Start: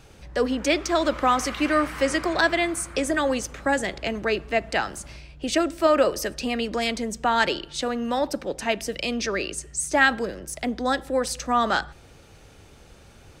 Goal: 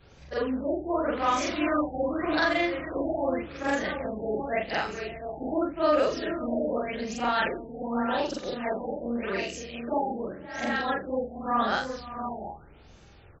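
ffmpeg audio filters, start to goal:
ffmpeg -i in.wav -af "afftfilt=real='re':imag='-im':win_size=4096:overlap=0.75,aecho=1:1:520|594|696|722|749:0.112|0.168|0.15|0.398|0.126,afftfilt=real='re*lt(b*sr/1024,870*pow(7900/870,0.5+0.5*sin(2*PI*0.86*pts/sr)))':imag='im*lt(b*sr/1024,870*pow(7900/870,0.5+0.5*sin(2*PI*0.86*pts/sr)))':win_size=1024:overlap=0.75" out.wav

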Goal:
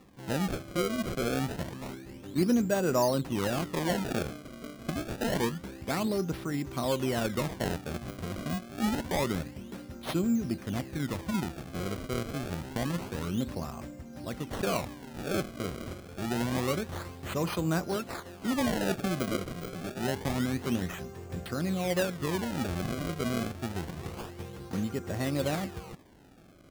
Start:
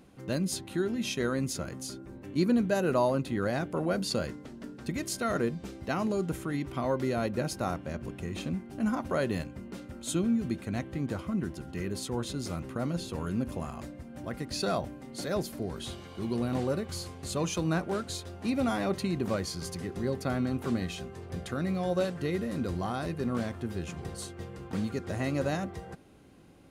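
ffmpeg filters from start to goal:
ffmpeg -i in.wav -filter_complex "[0:a]asettb=1/sr,asplit=3[link_01][link_02][link_03];[link_01]atrim=end=17.964[link_04];[link_02]atrim=start=17.96:end=20.15,asetpts=PTS-STARTPTS,afade=type=in:duration=0.004:curve=qsin,afade=type=out:start_time=2.186:duration=0.004:curve=qsin,highpass=frequency=110:width=0.5412,highpass=frequency=110:width=1.3066[link_05];[link_03]atrim=start=20.146[link_06];[link_04][link_05]acrossfade=duration=0.004:curve1=hsin:curve2=qsin[link_07];[link_07][link_06]acrossfade=duration=0.004:curve1=qsin:curve2=hsin,acrusher=samples=28:mix=1:aa=0.000001:lfo=1:lforange=44.8:lforate=0.27" out.wav

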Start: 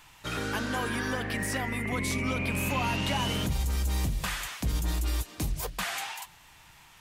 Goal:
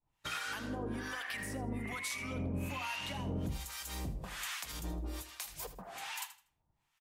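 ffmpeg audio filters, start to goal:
ffmpeg -i in.wav -filter_complex "[0:a]agate=range=-33dB:threshold=-41dB:ratio=3:detection=peak,asettb=1/sr,asplit=3[link_01][link_02][link_03];[link_01]atrim=end=3.774[link_04];[link_02]atrim=start=3.77:end=5.95,asetpts=PTS-STARTPTS,afade=type=in:duration=0.004:curve=qsin,afade=type=out:start_time=2.176:duration=0.004:curve=qsin,lowshelf=frequency=170:gain=-10.5[link_05];[link_03]atrim=start=5.946[link_06];[link_04][link_05]acrossfade=duration=0.004:curve1=hsin:curve2=qsin[link_07];[link_07][link_06]acrossfade=duration=0.004:curve1=qsin:curve2=hsin,alimiter=level_in=2.5dB:limit=-24dB:level=0:latency=1:release=349,volume=-2.5dB,acrossover=split=810[link_08][link_09];[link_08]aeval=exprs='val(0)*(1-1/2+1/2*cos(2*PI*1.2*n/s))':channel_layout=same[link_10];[link_09]aeval=exprs='val(0)*(1-1/2-1/2*cos(2*PI*1.2*n/s))':channel_layout=same[link_11];[link_10][link_11]amix=inputs=2:normalize=0,aecho=1:1:80|160|240:0.211|0.0507|0.0122,volume=1.5dB" out.wav

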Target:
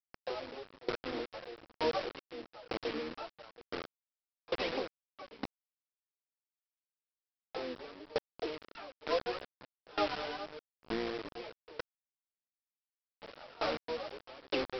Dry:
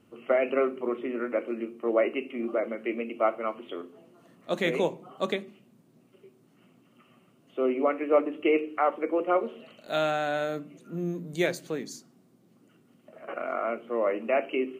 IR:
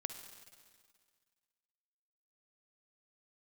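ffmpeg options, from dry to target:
-filter_complex "[0:a]aphaser=in_gain=1:out_gain=1:delay=4.9:decay=0.79:speed=0.83:type=triangular,asplit=3[link_01][link_02][link_03];[link_02]asetrate=58866,aresample=44100,atempo=0.749154,volume=-3dB[link_04];[link_03]asetrate=88200,aresample=44100,atempo=0.5,volume=-5dB[link_05];[link_01][link_04][link_05]amix=inputs=3:normalize=0,highpass=frequency=210:width=0.5412,highpass=frequency=210:width=1.3066,equalizer=frequency=280:width_type=q:width=4:gain=8,equalizer=frequency=480:width_type=q:width=4:gain=10,equalizer=frequency=1900:width_type=q:width=4:gain=-6,lowpass=frequency=3500:width=0.5412,lowpass=frequency=3500:width=1.3066,acompressor=threshold=-27dB:ratio=4,afftdn=noise_reduction=14:noise_floor=-48,aresample=11025,acrusher=bits=4:mix=0:aa=0.000001,aresample=44100,aeval=exprs='val(0)*pow(10,-24*if(lt(mod(1.1*n/s,1),2*abs(1.1)/1000),1-mod(1.1*n/s,1)/(2*abs(1.1)/1000),(mod(1.1*n/s,1)-2*abs(1.1)/1000)/(1-2*abs(1.1)/1000))/20)':channel_layout=same,volume=-3.5dB"

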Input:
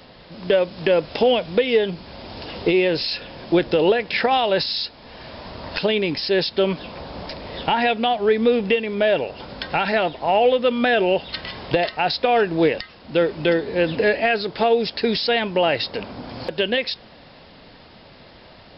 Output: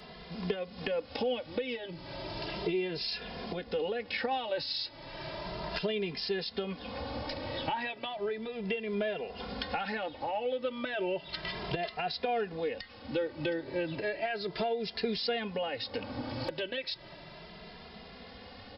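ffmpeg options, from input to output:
ffmpeg -i in.wav -filter_complex "[0:a]acompressor=threshold=-30dB:ratio=4,aeval=exprs='val(0)+0.000794*sin(2*PI*2000*n/s)':channel_layout=same,asplit=2[link_01][link_02];[link_02]adelay=2.5,afreqshift=0.34[link_03];[link_01][link_03]amix=inputs=2:normalize=1" out.wav

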